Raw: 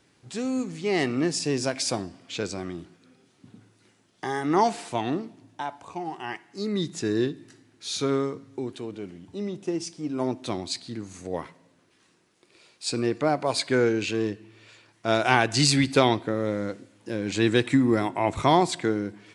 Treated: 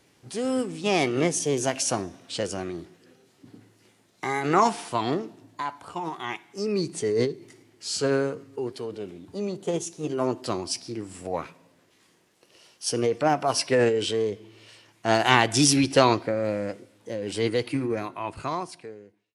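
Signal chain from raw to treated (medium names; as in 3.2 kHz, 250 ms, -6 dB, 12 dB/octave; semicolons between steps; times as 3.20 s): fade out at the end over 3.21 s; formant shift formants +3 st; trim +1.5 dB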